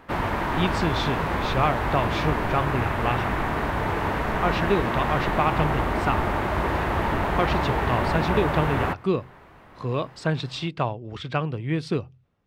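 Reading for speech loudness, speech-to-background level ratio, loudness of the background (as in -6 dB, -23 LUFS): -27.5 LUFS, -2.0 dB, -25.5 LUFS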